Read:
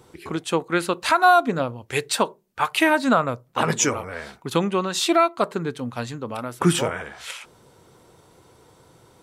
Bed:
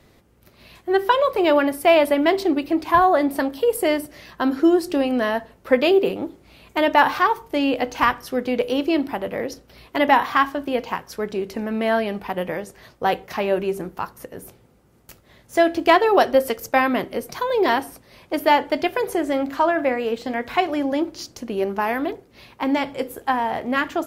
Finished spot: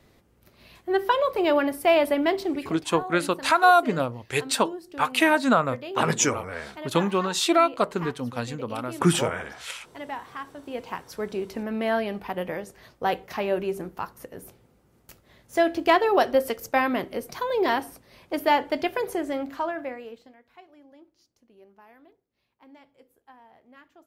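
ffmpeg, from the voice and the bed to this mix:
-filter_complex "[0:a]adelay=2400,volume=0.841[s0];[1:a]volume=3.16,afade=t=out:st=2.21:d=0.83:silence=0.188365,afade=t=in:st=10.5:d=0.67:silence=0.188365,afade=t=out:st=18.98:d=1.38:silence=0.0501187[s1];[s0][s1]amix=inputs=2:normalize=0"

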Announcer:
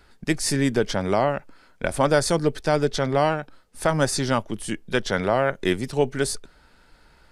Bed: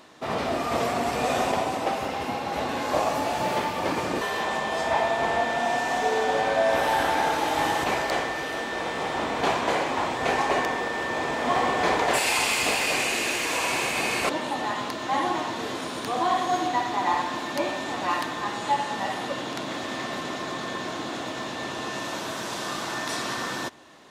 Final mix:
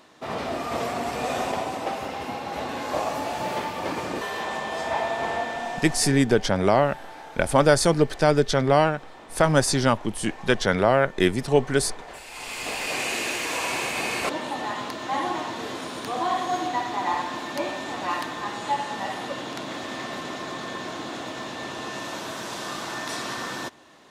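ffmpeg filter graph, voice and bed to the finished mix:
-filter_complex "[0:a]adelay=5550,volume=1.26[s0];[1:a]volume=5.31,afade=t=out:st=5.31:d=0.93:silence=0.158489,afade=t=in:st=12.3:d=0.82:silence=0.141254[s1];[s0][s1]amix=inputs=2:normalize=0"

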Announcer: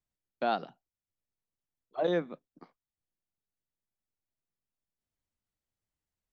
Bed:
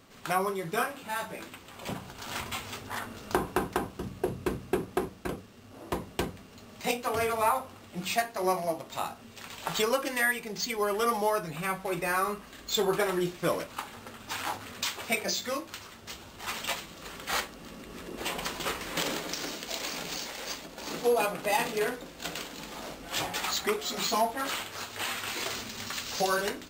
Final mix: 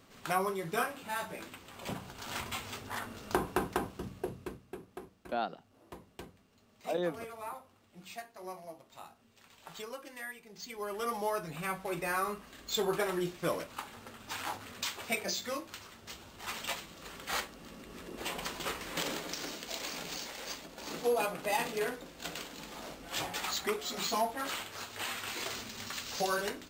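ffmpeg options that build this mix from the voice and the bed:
-filter_complex "[0:a]adelay=4900,volume=0.596[s0];[1:a]volume=2.82,afade=t=out:st=3.9:d=0.73:silence=0.211349,afade=t=in:st=10.47:d=1.05:silence=0.251189[s1];[s0][s1]amix=inputs=2:normalize=0"

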